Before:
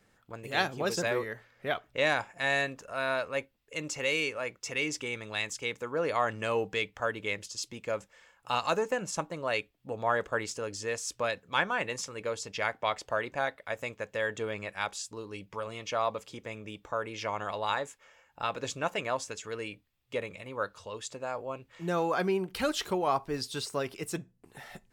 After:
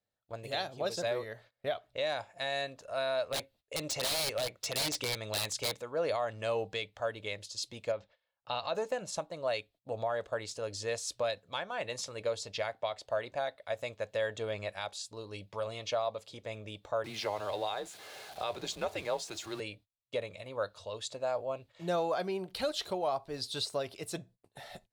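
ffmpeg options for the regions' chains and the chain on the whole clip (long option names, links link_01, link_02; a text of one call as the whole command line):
ffmpeg -i in.wav -filter_complex "[0:a]asettb=1/sr,asplit=3[link_01][link_02][link_03];[link_01]atrim=end=3.314[link_04];[link_02]atrim=start=3.31:end=5.82,asetpts=PTS-STARTPTS,afade=type=in:duration=0.004:curve=qsin,afade=type=out:start_time=2.506:duration=0.004:curve=qsin,acontrast=67,aeval=exprs='(mod(11.2*val(0)+1,2)-1)/11.2':channel_layout=same[link_05];[link_03]atrim=start=5.816[link_06];[link_04][link_05]acrossfade=duration=0.004:curve1=hsin:curve2=qsin[link_07];[link_07][link_06]acrossfade=duration=0.004:curve1=qsin:curve2=hsin,asettb=1/sr,asplit=3[link_08][link_09][link_10];[link_08]atrim=end=7.924[link_11];[link_09]atrim=start=7.92:end=8.75,asetpts=PTS-STARTPTS,afade=type=in:duration=0.004:curve=qsin,afade=type=out:start_time=0.826:duration=0.004:curve=qsin,lowpass=frequency=4400:width=0.5412,lowpass=frequency=4400:width=1.3066,acompressor=threshold=-35dB:ratio=1.5:attack=3.2:release=140:knee=1:detection=peak[link_12];[link_10]atrim=start=8.746[link_13];[link_11][link_12]acrossfade=duration=0.004:curve1=hsin:curve2=qsin[link_14];[link_14][link_13]acrossfade=duration=0.004:curve1=qsin:curve2=hsin,asettb=1/sr,asplit=3[link_15][link_16][link_17];[link_15]atrim=end=17.044[link_18];[link_16]atrim=start=17.04:end=19.6,asetpts=PTS-STARTPTS,afade=type=in:duration=0.004:curve=qsin,afade=type=out:start_time=2.556:duration=0.004:curve=qsin,aeval=exprs='val(0)+0.5*0.00841*sgn(val(0))':channel_layout=same,highpass=frequency=200:width=0.5412,highpass=frequency=200:width=1.3066,afreqshift=-100[link_19];[link_17]atrim=start=19.596[link_20];[link_18][link_19]acrossfade=duration=0.004:curve1=hsin:curve2=qsin[link_21];[link_21][link_20]acrossfade=duration=0.004:curve1=qsin:curve2=hsin,agate=range=-22dB:threshold=-53dB:ratio=16:detection=peak,equalizer=frequency=100:width_type=o:width=0.67:gain=8,equalizer=frequency=630:width_type=o:width=0.67:gain=12,equalizer=frequency=4000:width_type=o:width=0.67:gain=12,equalizer=frequency=10000:width_type=o:width=0.67:gain=5,alimiter=limit=-17dB:level=0:latency=1:release=498,volume=-6dB" out.wav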